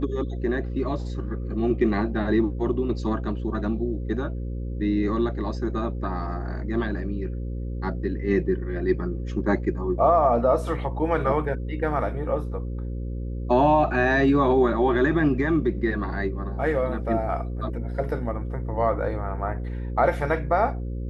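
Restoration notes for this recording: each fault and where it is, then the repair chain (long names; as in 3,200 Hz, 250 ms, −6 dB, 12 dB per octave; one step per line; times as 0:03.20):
mains buzz 60 Hz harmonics 9 −30 dBFS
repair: hum removal 60 Hz, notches 9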